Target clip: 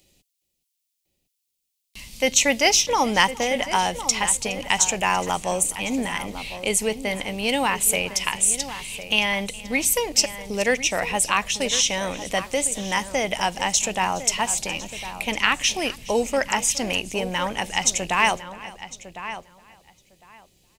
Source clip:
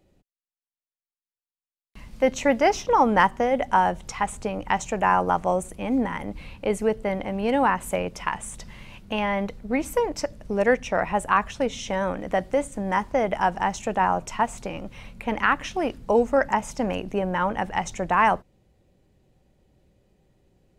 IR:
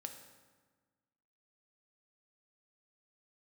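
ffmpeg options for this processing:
-filter_complex "[0:a]asplit=2[a][b];[b]aecho=0:1:416:0.0944[c];[a][c]amix=inputs=2:normalize=0,aexciter=amount=7.9:drive=4.3:freq=2.2k,asplit=2[d][e];[e]adelay=1055,lowpass=f=2.9k:p=1,volume=-12dB,asplit=2[f][g];[g]adelay=1055,lowpass=f=2.9k:p=1,volume=0.16[h];[f][h]amix=inputs=2:normalize=0[i];[d][i]amix=inputs=2:normalize=0,volume=-2.5dB"

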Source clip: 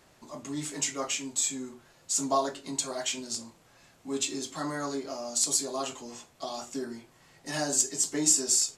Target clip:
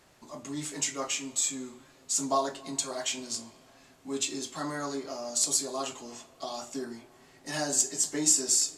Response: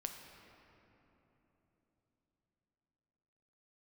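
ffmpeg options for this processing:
-filter_complex "[0:a]asplit=2[a][b];[1:a]atrim=start_sample=2205,asetrate=37044,aresample=44100,lowshelf=f=450:g=-8.5[c];[b][c]afir=irnorm=-1:irlink=0,volume=-8dB[d];[a][d]amix=inputs=2:normalize=0,volume=-2.5dB"

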